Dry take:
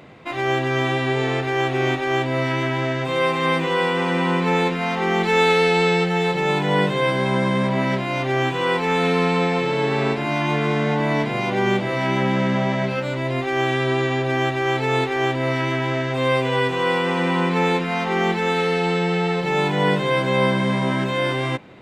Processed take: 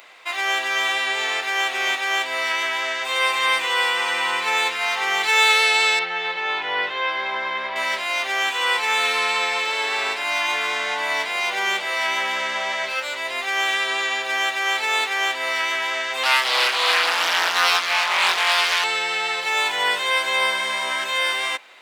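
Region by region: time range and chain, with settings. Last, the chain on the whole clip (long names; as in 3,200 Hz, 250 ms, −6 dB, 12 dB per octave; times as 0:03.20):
0:05.99–0:07.76: high-frequency loss of the air 270 metres + double-tracking delay 28 ms −11 dB
0:16.23–0:18.84: low-shelf EQ 130 Hz −11 dB + double-tracking delay 24 ms −2 dB + highs frequency-modulated by the lows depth 0.72 ms
whole clip: high-pass filter 720 Hz 12 dB per octave; spectral tilt +3.5 dB per octave; level +1 dB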